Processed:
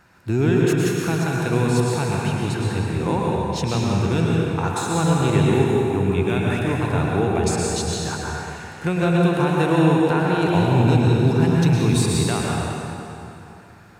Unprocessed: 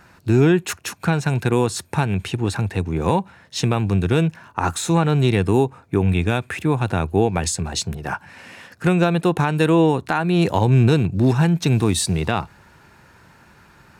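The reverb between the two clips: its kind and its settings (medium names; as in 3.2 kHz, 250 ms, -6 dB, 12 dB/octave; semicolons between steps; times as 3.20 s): plate-style reverb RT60 3 s, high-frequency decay 0.75×, pre-delay 95 ms, DRR -3.5 dB; trim -5.5 dB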